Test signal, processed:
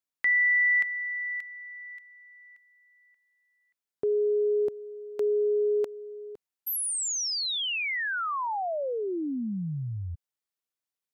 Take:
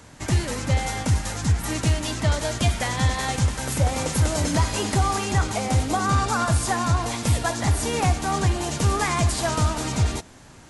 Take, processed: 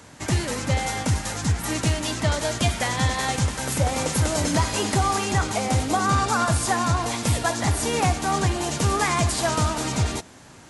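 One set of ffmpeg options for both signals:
-af "highpass=f=110:p=1,volume=1.19"

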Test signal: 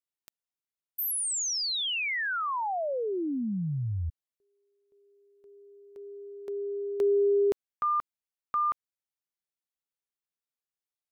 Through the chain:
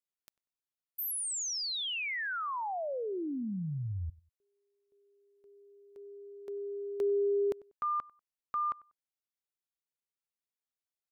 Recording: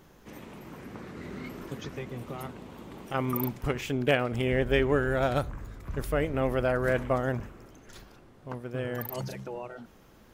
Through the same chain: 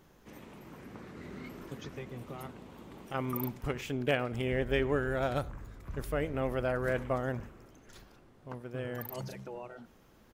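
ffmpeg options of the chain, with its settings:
-filter_complex "[0:a]asplit=2[s0][s1];[s1]adelay=96,lowpass=f=2000:p=1,volume=0.0841,asplit=2[s2][s3];[s3]adelay=96,lowpass=f=2000:p=1,volume=0.25[s4];[s0][s2][s4]amix=inputs=3:normalize=0,volume=0.562"

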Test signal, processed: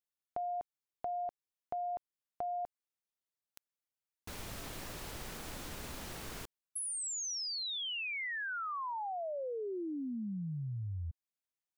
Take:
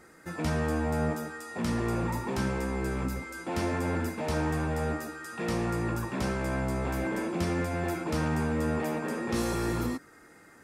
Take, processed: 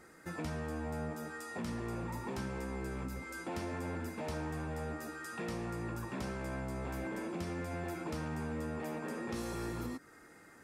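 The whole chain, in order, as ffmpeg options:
-af "acompressor=threshold=0.0178:ratio=3,volume=0.708"

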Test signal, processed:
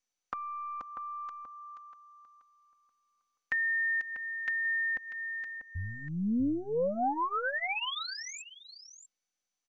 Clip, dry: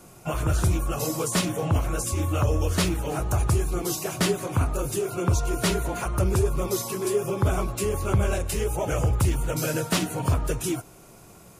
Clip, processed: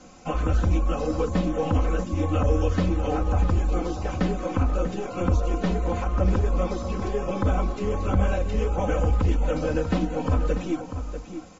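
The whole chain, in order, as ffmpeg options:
-filter_complex "[0:a]acrossover=split=820[s0][s1];[s0]aeval=exprs='0.224*(cos(1*acos(clip(val(0)/0.224,-1,1)))-cos(1*PI/2))+0.00178*(cos(4*acos(clip(val(0)/0.224,-1,1)))-cos(4*PI/2))+0.00631*(cos(8*acos(clip(val(0)/0.224,-1,1)))-cos(8*PI/2))':c=same[s2];[s1]acompressor=threshold=0.0178:ratio=20[s3];[s2][s3]amix=inputs=2:normalize=0,asplit=2[s4][s5];[s5]adelay=641.4,volume=0.355,highshelf=f=4000:g=-14.4[s6];[s4][s6]amix=inputs=2:normalize=0,acrossover=split=3500[s7][s8];[s8]acompressor=threshold=0.00316:ratio=4:attack=1:release=60[s9];[s7][s9]amix=inputs=2:normalize=0,aecho=1:1:3.9:0.91" -ar 24000 -c:a mp2 -b:a 96k

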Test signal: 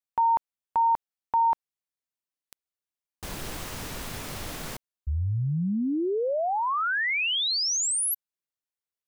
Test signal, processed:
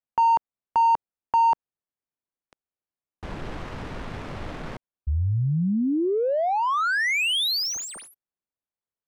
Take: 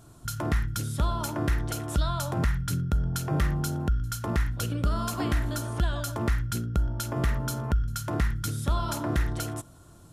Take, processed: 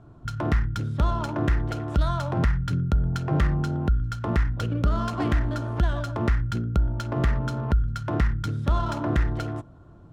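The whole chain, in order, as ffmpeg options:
-filter_complex "[0:a]lowpass=f=12000:w=0.5412,lowpass=f=12000:w=1.3066,acrossover=split=440[s0][s1];[s1]adynamicsmooth=sensitivity=4:basefreq=1600[s2];[s0][s2]amix=inputs=2:normalize=0,volume=1.5"

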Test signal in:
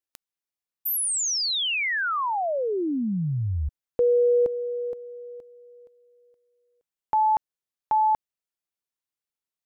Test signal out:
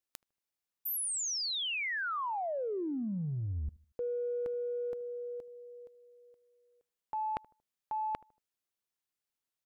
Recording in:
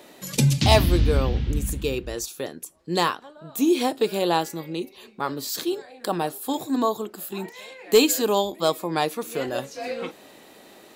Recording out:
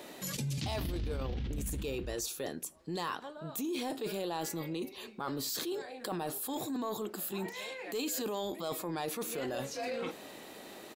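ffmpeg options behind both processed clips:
-filter_complex "[0:a]areverse,acompressor=threshold=0.02:ratio=10:attack=2.8:release=27:knee=6:detection=peak,areverse,asplit=2[s0][s1];[s1]adelay=77,lowpass=f=1000:p=1,volume=0.0794,asplit=2[s2][s3];[s3]adelay=77,lowpass=f=1000:p=1,volume=0.4,asplit=2[s4][s5];[s5]adelay=77,lowpass=f=1000:p=1,volume=0.4[s6];[s0][s2][s4][s6]amix=inputs=4:normalize=0"

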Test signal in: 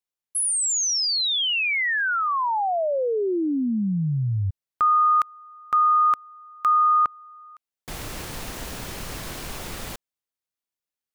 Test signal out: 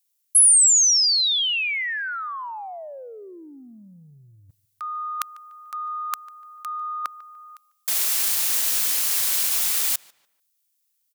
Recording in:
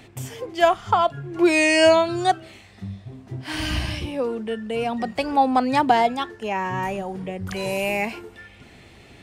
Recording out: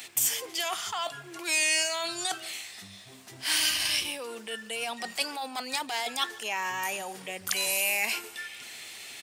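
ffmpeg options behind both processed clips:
-filter_complex "[0:a]apsyclip=7.5,areverse,acompressor=threshold=0.158:ratio=10:attack=40:release=43:knee=6:detection=peak,areverse,aderivative,asplit=2[s0][s1];[s1]adelay=147,lowpass=f=3400:p=1,volume=0.0891,asplit=2[s2][s3];[s3]adelay=147,lowpass=f=3400:p=1,volume=0.34,asplit=2[s4][s5];[s5]adelay=147,lowpass=f=3400:p=1,volume=0.34[s6];[s0][s2][s4][s6]amix=inputs=4:normalize=0,volume=0.891"

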